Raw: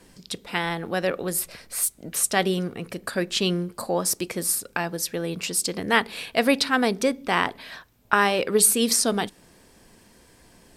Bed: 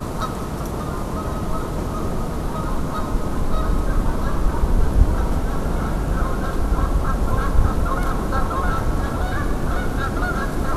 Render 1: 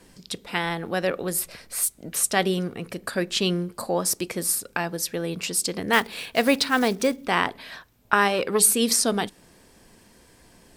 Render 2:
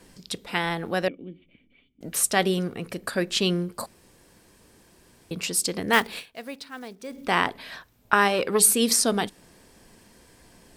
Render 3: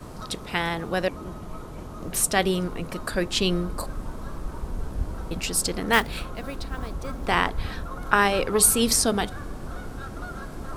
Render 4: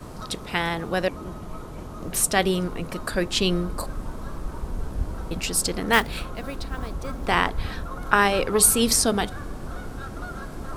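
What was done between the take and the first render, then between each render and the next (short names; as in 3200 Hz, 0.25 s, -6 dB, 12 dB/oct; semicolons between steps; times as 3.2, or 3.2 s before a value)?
5.93–7.27 block floating point 5-bit; 8.28–8.69 core saturation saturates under 1400 Hz
1.08–2.01 vocal tract filter i; 3.86–5.31 room tone; 6.18–7.17 dip -17.5 dB, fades 0.35 s exponential
add bed -13.5 dB
gain +1 dB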